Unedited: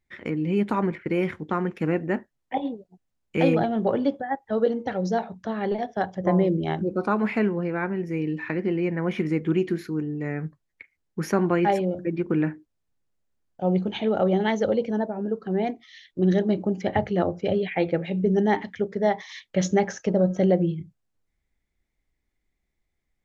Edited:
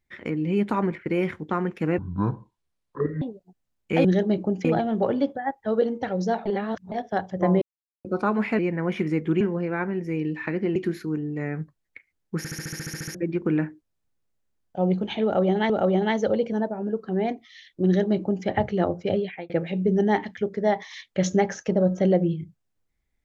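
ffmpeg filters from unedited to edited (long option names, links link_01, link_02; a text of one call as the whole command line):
ffmpeg -i in.wav -filter_complex "[0:a]asplit=25[link_01][link_02][link_03][link_04][link_05][link_06][link_07][link_08][link_09][link_10][link_11][link_12][link_13][link_14][link_15][link_16][link_17][link_18][link_19][link_20][link_21][link_22][link_23][link_24][link_25];[link_01]atrim=end=1.984[link_26];[link_02]atrim=start=1.98:end=2.66,asetpts=PTS-STARTPTS,asetrate=24255,aresample=44100[link_27];[link_03]atrim=start=2.656:end=3.492[link_28];[link_04]atrim=start=16.238:end=16.842[link_29];[link_05]atrim=start=3.488:end=5.302[link_30];[link_06]atrim=start=5.298:end=5.762,asetpts=PTS-STARTPTS,areverse[link_31];[link_07]atrim=start=5.758:end=6.46,asetpts=PTS-STARTPTS,afade=type=out:start_time=0.698:duration=0.004:curve=hsin[link_32];[link_08]atrim=start=6.46:end=6.89,asetpts=PTS-STARTPTS,volume=0[link_33];[link_09]atrim=start=6.89:end=7.432,asetpts=PTS-STARTPTS,afade=type=in:duration=0.004:curve=hsin[link_34];[link_10]atrim=start=8.778:end=9.602[link_35];[link_11]atrim=start=7.428:end=8.782[link_36];[link_12]atrim=start=9.598:end=11.292[link_37];[link_13]atrim=start=11.218:end=11.292[link_38];[link_14]atrim=start=11.218:end=11.292[link_39];[link_15]atrim=start=11.218:end=11.292[link_40];[link_16]atrim=start=11.218:end=11.292[link_41];[link_17]atrim=start=11.218:end=11.292[link_42];[link_18]atrim=start=11.218:end=11.292[link_43];[link_19]atrim=start=11.218:end=11.292[link_44];[link_20]atrim=start=11.218:end=11.292[link_45];[link_21]atrim=start=11.218:end=11.292[link_46];[link_22]atrim=start=11.218:end=11.292[link_47];[link_23]atrim=start=11.988:end=14.542[link_48];[link_24]atrim=start=14.078:end=17.88,asetpts=PTS-STARTPTS,afade=type=out:start_time=3.452:duration=0.35[link_49];[link_25]atrim=start=17.88,asetpts=PTS-STARTPTS,afade=type=in:duration=0.004:curve=hsin[link_50];[link_26][link_27]acrossfade=duration=0.004:curve1=hsin:curve2=hsin[link_51];[link_51][link_28]acrossfade=duration=0.004:curve1=hsin:curve2=hsin[link_52];[link_52][link_29]acrossfade=duration=0.004:curve1=hsin:curve2=hsin[link_53];[link_53][link_30]acrossfade=duration=0.004:curve1=hsin:curve2=hsin[link_54];[link_54][link_31]acrossfade=duration=0.004:curve1=hsin:curve2=hsin[link_55];[link_32][link_33][link_34]concat=n=3:v=0:a=1[link_56];[link_55][link_56]acrossfade=duration=0.004:curve1=hsin:curve2=hsin[link_57];[link_57][link_35]acrossfade=duration=0.004:curve1=hsin:curve2=hsin[link_58];[link_58][link_36]acrossfade=duration=0.004:curve1=hsin:curve2=hsin[link_59];[link_59][link_37]acrossfade=duration=0.004:curve1=hsin:curve2=hsin[link_60];[link_60][link_38]acrossfade=duration=0.004:curve1=hsin:curve2=hsin[link_61];[link_61][link_39]acrossfade=duration=0.004:curve1=hsin:curve2=hsin[link_62];[link_62][link_40]acrossfade=duration=0.004:curve1=hsin:curve2=hsin[link_63];[link_63][link_41]acrossfade=duration=0.004:curve1=hsin:curve2=hsin[link_64];[link_64][link_42]acrossfade=duration=0.004:curve1=hsin:curve2=hsin[link_65];[link_65][link_43]acrossfade=duration=0.004:curve1=hsin:curve2=hsin[link_66];[link_66][link_44]acrossfade=duration=0.004:curve1=hsin:curve2=hsin[link_67];[link_67][link_45]acrossfade=duration=0.004:curve1=hsin:curve2=hsin[link_68];[link_68][link_46]acrossfade=duration=0.004:curve1=hsin:curve2=hsin[link_69];[link_69][link_47]acrossfade=duration=0.004:curve1=hsin:curve2=hsin[link_70];[link_70][link_48]acrossfade=duration=0.004:curve1=hsin:curve2=hsin[link_71];[link_49][link_50]concat=n=2:v=0:a=1[link_72];[link_71][link_72]acrossfade=duration=0.004:curve1=hsin:curve2=hsin" out.wav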